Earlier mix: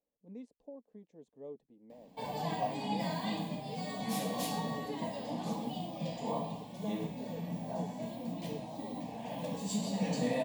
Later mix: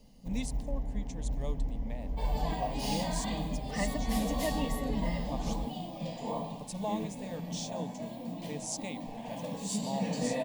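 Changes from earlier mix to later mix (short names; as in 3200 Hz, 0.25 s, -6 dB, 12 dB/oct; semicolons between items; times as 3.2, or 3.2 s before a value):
speech: remove band-pass 410 Hz, Q 2.9; first sound: unmuted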